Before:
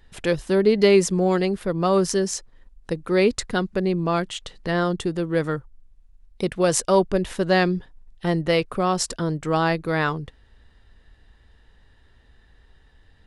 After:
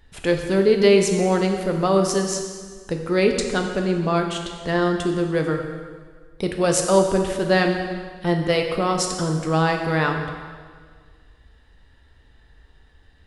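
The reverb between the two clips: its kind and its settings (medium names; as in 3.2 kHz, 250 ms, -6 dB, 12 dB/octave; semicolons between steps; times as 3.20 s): plate-style reverb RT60 1.7 s, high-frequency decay 0.9×, DRR 3 dB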